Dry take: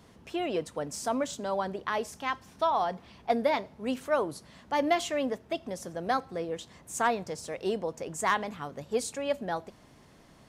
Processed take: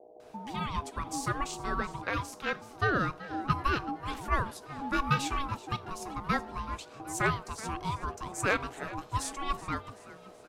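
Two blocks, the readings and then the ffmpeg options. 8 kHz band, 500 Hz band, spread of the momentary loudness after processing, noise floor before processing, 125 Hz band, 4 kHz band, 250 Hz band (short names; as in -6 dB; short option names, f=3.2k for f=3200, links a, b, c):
-1.0 dB, -8.5 dB, 10 LU, -57 dBFS, +10.0 dB, -1.0 dB, -2.5 dB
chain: -filter_complex "[0:a]aeval=exprs='val(0)+0.00224*(sin(2*PI*60*n/s)+sin(2*PI*2*60*n/s)/2+sin(2*PI*3*60*n/s)/3+sin(2*PI*4*60*n/s)/4+sin(2*PI*5*60*n/s)/5)':c=same,acrossover=split=310[a][b];[b]adelay=200[c];[a][c]amix=inputs=2:normalize=0,aeval=exprs='val(0)*sin(2*PI*550*n/s)':c=same,asplit=2[d][e];[e]asplit=4[f][g][h][i];[f]adelay=378,afreqshift=82,volume=-17dB[j];[g]adelay=756,afreqshift=164,volume=-23.4dB[k];[h]adelay=1134,afreqshift=246,volume=-29.8dB[l];[i]adelay=1512,afreqshift=328,volume=-36.1dB[m];[j][k][l][m]amix=inputs=4:normalize=0[n];[d][n]amix=inputs=2:normalize=0,volume=2dB"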